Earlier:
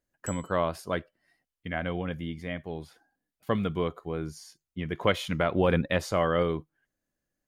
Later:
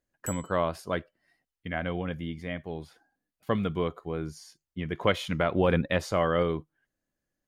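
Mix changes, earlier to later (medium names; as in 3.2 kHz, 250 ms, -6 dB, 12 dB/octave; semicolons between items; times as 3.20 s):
speech: add treble shelf 8.7 kHz -4 dB; background: remove low-pass 8.1 kHz 12 dB/octave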